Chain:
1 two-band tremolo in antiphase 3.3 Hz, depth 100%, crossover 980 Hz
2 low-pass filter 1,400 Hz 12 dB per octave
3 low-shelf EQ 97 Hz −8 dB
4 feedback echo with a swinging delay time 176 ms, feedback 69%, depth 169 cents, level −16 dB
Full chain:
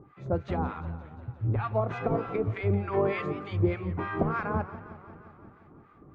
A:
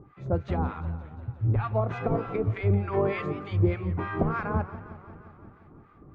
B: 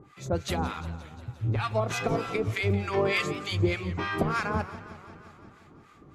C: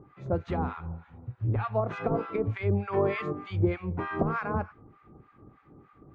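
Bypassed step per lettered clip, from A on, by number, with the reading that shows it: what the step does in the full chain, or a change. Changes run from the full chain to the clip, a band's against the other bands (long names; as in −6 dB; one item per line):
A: 3, 125 Hz band +3.5 dB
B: 2, 4 kHz band +15.5 dB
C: 4, change in momentary loudness spread −6 LU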